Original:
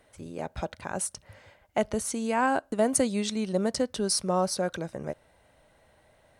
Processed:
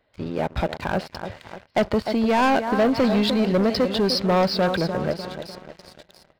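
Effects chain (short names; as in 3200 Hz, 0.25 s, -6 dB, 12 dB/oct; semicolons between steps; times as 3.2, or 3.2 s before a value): split-band echo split 2100 Hz, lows 0.3 s, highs 0.682 s, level -12 dB; downsampling 11025 Hz; sample leveller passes 3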